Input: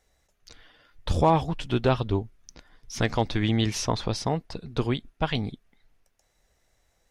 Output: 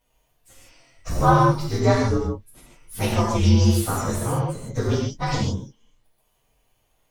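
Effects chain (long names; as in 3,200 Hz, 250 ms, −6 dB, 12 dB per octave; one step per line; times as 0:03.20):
partials spread apart or drawn together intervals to 119%
reverb whose tail is shaped and stops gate 180 ms flat, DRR −3 dB
level +2 dB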